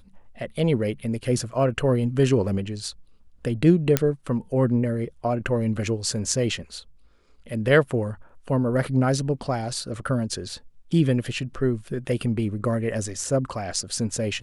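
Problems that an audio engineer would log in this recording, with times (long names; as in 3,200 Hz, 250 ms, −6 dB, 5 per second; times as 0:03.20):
0:03.97: click −3 dBFS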